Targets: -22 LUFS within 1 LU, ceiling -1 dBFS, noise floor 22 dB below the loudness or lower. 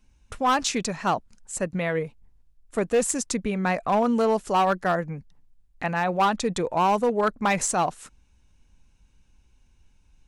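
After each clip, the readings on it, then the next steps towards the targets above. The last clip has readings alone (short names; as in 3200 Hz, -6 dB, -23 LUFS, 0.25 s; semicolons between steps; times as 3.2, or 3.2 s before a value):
clipped 1.2%; flat tops at -15.5 dBFS; loudness -25.0 LUFS; peak -15.5 dBFS; loudness target -22.0 LUFS
-> clip repair -15.5 dBFS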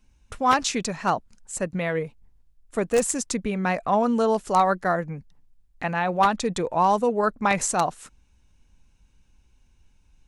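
clipped 0.0%; loudness -24.0 LUFS; peak -6.5 dBFS; loudness target -22.0 LUFS
-> gain +2 dB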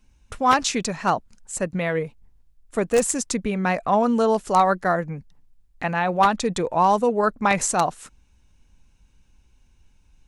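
loudness -22.0 LUFS; peak -4.5 dBFS; noise floor -59 dBFS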